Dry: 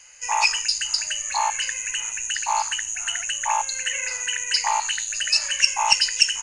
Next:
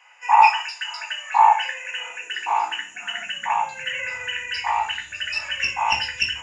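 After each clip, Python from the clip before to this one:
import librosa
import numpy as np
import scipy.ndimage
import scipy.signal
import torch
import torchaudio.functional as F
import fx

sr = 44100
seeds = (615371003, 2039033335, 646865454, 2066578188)

y = fx.filter_sweep_highpass(x, sr, from_hz=840.0, to_hz=73.0, start_s=1.38, end_s=4.4, q=3.1)
y = scipy.signal.savgol_filter(y, 25, 4, mode='constant')
y = fx.room_shoebox(y, sr, seeds[0], volume_m3=190.0, walls='furnished', distance_m=1.9)
y = y * 10.0 ** (-2.0 / 20.0)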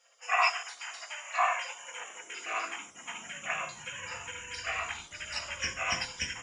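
y = fx.spec_gate(x, sr, threshold_db=-15, keep='weak')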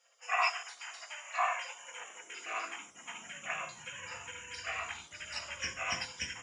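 y = scipy.signal.sosfilt(scipy.signal.butter(2, 63.0, 'highpass', fs=sr, output='sos'), x)
y = y * 10.0 ** (-4.0 / 20.0)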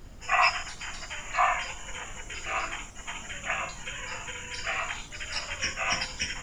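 y = fx.dmg_noise_colour(x, sr, seeds[1], colour='brown', level_db=-50.0)
y = y * 10.0 ** (7.0 / 20.0)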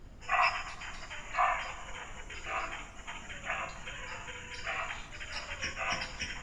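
y = fx.high_shelf(x, sr, hz=4900.0, db=-9.5)
y = fx.echo_filtered(y, sr, ms=129, feedback_pct=58, hz=4600.0, wet_db=-14.5)
y = y * 10.0 ** (-4.0 / 20.0)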